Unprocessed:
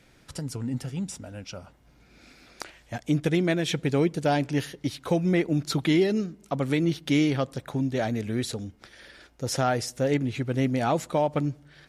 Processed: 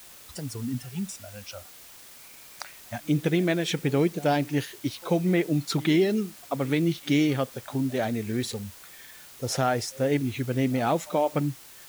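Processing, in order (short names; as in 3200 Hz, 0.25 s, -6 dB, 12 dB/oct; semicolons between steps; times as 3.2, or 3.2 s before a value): pre-echo 90 ms -21.5 dB; spectral noise reduction 21 dB; requantised 8-bit, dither triangular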